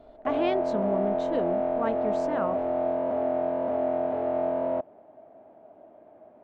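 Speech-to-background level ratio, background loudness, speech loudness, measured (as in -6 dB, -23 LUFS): -5.0 dB, -28.0 LUFS, -33.0 LUFS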